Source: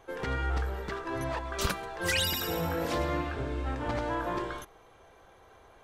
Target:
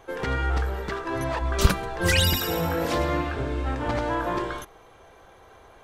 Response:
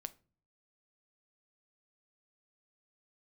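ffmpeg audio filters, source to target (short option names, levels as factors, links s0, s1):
-filter_complex "[0:a]asettb=1/sr,asplit=3[s0][s1][s2];[s0]atrim=end=1.414[s3];[s1]atrim=start=1.41:end=2.38,asetpts=PTS-STARTPTS,afade=t=in:d=0.004:c=qsin,afade=t=out:st=0.966:d=0.004:c=qsin,lowshelf=f=250:g=9.5[s4];[s2]atrim=start=2.376[s5];[s3][s4]acrossfade=d=0.004:c1=hsin:c2=qsin[s6];[s6][s5]acrossfade=d=0.004:c1=qsin:c2=hsin,volume=1.88"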